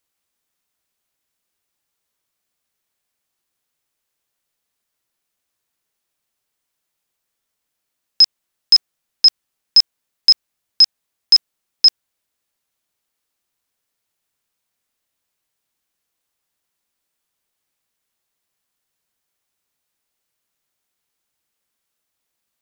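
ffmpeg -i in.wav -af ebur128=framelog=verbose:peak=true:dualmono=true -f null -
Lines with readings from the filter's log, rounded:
Integrated loudness:
  I:         -10.5 LUFS
  Threshold: -20.6 LUFS
Loudness range:
  LRA:         7.8 LU
  Threshold: -33.5 LUFS
  LRA low:   -19.1 LUFS
  LRA high:  -11.3 LUFS
True peak:
  Peak:       -3.7 dBFS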